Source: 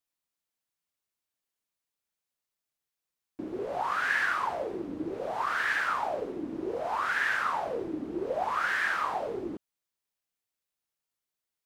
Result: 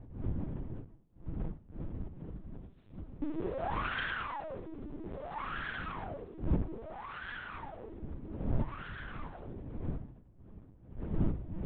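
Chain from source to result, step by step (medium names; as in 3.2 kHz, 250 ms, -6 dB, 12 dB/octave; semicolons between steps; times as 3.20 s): single-diode clipper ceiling -31.5 dBFS; Doppler pass-by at 2.87 s, 21 m/s, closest 1.8 m; wind noise 150 Hz -58 dBFS; gain riding within 5 dB 2 s; LPC vocoder at 8 kHz pitch kept; trim +17.5 dB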